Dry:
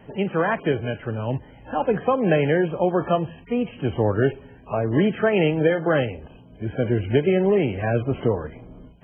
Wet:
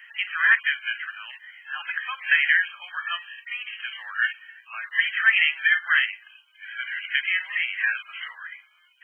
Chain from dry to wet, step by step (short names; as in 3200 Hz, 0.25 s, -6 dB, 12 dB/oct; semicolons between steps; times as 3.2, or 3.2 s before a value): steep high-pass 1500 Hz 36 dB/oct; bell 1900 Hz +8.5 dB 0.25 oct; gain +8.5 dB